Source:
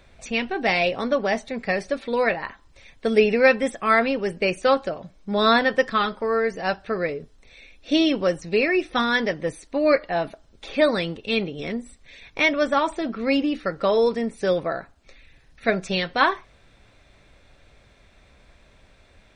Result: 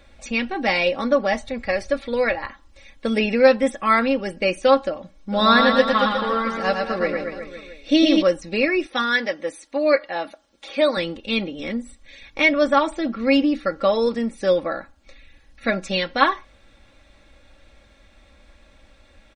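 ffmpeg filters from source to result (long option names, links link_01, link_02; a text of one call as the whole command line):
ffmpeg -i in.wav -filter_complex "[0:a]asettb=1/sr,asplit=3[link_01][link_02][link_03];[link_01]atrim=end=1.334[link_04];[link_02]atrim=start=1.33:end=2.46,asetpts=PTS-STARTPTS,afade=type=in:duration=0.004:curve=qsin,afade=type=out:start_time=1.126:duration=0.004:curve=qsin,lowshelf=frequency=130:width_type=q:width=3:gain=7[link_05];[link_03]atrim=start=2.456[link_06];[link_04][link_05]acrossfade=duration=0.004:curve1=hsin:curve2=qsin[link_07];[link_07][link_06]acrossfade=duration=0.004:curve1=qsin:curve2=hsin,asplit=3[link_08][link_09][link_10];[link_08]afade=type=out:start_time=5.31:duration=0.02[link_11];[link_09]aecho=1:1:110|231|364.1|510.5|671.6:0.631|0.398|0.251|0.158|0.1,afade=type=in:start_time=5.31:duration=0.02,afade=type=out:start_time=8.21:duration=0.02[link_12];[link_10]afade=type=in:start_time=8.21:duration=0.02[link_13];[link_11][link_12][link_13]amix=inputs=3:normalize=0,asettb=1/sr,asplit=3[link_14][link_15][link_16];[link_14]atrim=end=8.864[link_17];[link_15]atrim=start=8.86:end=10.97,asetpts=PTS-STARTPTS,afade=type=in:duration=0.004:curve=qsin,afade=type=out:start_time=2.106:duration=0.004:curve=qsin,highpass=frequency=490:poles=1[link_18];[link_16]atrim=start=10.966[link_19];[link_17][link_18]acrossfade=duration=0.004:curve1=hsin:curve2=qsin[link_20];[link_20][link_19]acrossfade=duration=0.004:curve1=qsin:curve2=hsin,aecho=1:1:3.6:0.64" out.wav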